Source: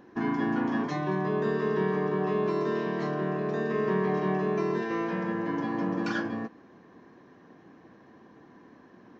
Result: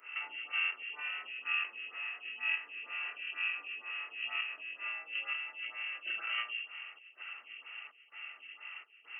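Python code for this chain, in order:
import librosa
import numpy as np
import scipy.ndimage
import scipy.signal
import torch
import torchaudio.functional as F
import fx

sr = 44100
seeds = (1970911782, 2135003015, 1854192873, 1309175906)

p1 = fx.room_shoebox(x, sr, seeds[0], volume_m3=78.0, walls='mixed', distance_m=0.69)
p2 = fx.step_gate(p1, sr, bpm=146, pattern='xxxxx..xx', floor_db=-12.0, edge_ms=4.5)
p3 = fx.tube_stage(p2, sr, drive_db=23.0, bias=0.3)
p4 = fx.over_compress(p3, sr, threshold_db=-36.0, ratio=-1.0)
p5 = fx.freq_invert(p4, sr, carrier_hz=3000)
p6 = scipy.signal.sosfilt(scipy.signal.butter(4, 280.0, 'highpass', fs=sr, output='sos'), p5)
p7 = p6 + fx.echo_single(p6, sr, ms=1105, db=-17.5, dry=0)
y = fx.stagger_phaser(p7, sr, hz=2.1)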